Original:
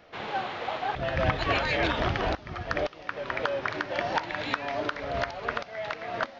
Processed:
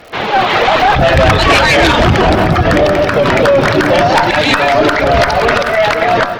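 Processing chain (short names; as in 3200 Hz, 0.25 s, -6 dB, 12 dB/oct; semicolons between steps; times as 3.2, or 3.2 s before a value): crackle 130/s -46 dBFS; reverb removal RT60 0.81 s; de-hum 98.59 Hz, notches 17; reverb RT60 3.0 s, pre-delay 30 ms, DRR 15.5 dB; AGC gain up to 14 dB; tube stage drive 16 dB, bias 0.4; 2.04–4.1 bell 180 Hz +7.5 dB 2 oct; echo 0.18 s -13 dB; maximiser +20.5 dB; gain -1 dB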